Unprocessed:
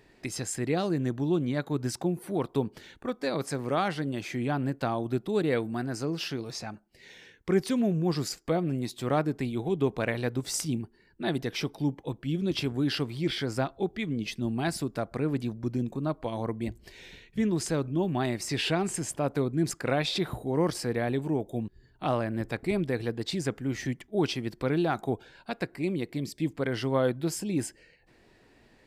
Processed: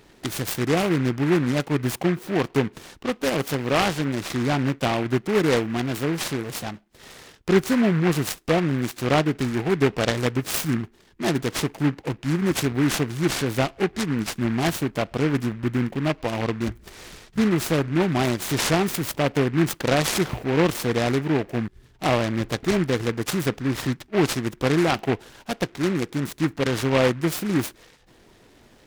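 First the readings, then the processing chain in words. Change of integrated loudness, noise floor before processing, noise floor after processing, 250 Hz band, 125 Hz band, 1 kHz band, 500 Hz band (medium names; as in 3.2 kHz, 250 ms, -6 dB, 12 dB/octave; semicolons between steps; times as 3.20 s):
+6.5 dB, -61 dBFS, -55 dBFS, +6.5 dB, +6.5 dB, +7.0 dB, +6.0 dB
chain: delay time shaken by noise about 1.5 kHz, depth 0.11 ms; trim +6.5 dB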